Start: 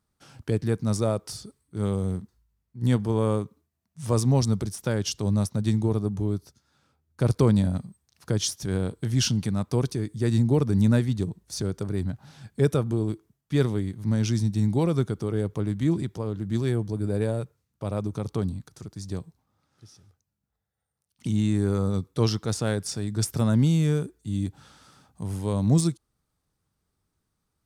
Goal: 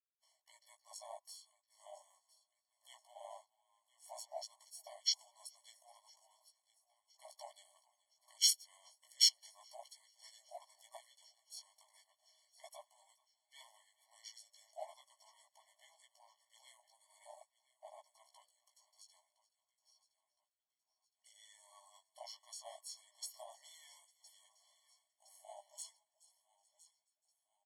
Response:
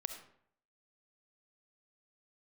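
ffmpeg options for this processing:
-filter_complex "[0:a]agate=range=0.0224:threshold=0.00355:ratio=3:detection=peak,bass=f=250:g=5,treble=f=4000:g=11,asplit=2[s0][s1];[s1]aecho=0:1:1014|2028|3042|4056:0.133|0.0653|0.032|0.0157[s2];[s0][s2]amix=inputs=2:normalize=0,afreqshift=-180,flanger=delay=15:depth=2.9:speed=0.39,asplit=2[s3][s4];[s4]asplit=3[s5][s6][s7];[s5]adelay=426,afreqshift=37,volume=0.0891[s8];[s6]adelay=852,afreqshift=74,volume=0.032[s9];[s7]adelay=1278,afreqshift=111,volume=0.0116[s10];[s8][s9][s10]amix=inputs=3:normalize=0[s11];[s3][s11]amix=inputs=2:normalize=0,acontrast=41,asplit=3[s12][s13][s14];[s13]asetrate=35002,aresample=44100,atempo=1.25992,volume=0.355[s15];[s14]asetrate=55563,aresample=44100,atempo=0.793701,volume=0.141[s16];[s12][s15][s16]amix=inputs=3:normalize=0,afwtdn=0.0794,afftfilt=real='re*eq(mod(floor(b*sr/1024/580),2),1)':imag='im*eq(mod(floor(b*sr/1024/580),2),1)':win_size=1024:overlap=0.75,volume=0.376"

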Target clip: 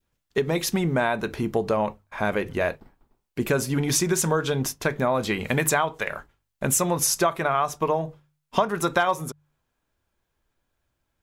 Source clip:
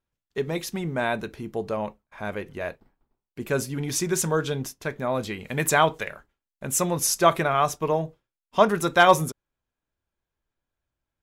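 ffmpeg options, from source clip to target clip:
-af "adynamicequalizer=threshold=0.0316:dfrequency=1000:dqfactor=0.99:tfrequency=1000:tqfactor=0.99:attack=5:release=100:ratio=0.375:range=2.5:mode=boostabove:tftype=bell,acompressor=threshold=0.0398:ratio=10,bandreject=f=49.73:t=h:w=4,bandreject=f=99.46:t=h:w=4,bandreject=f=149.19:t=h:w=4,volume=2.82"

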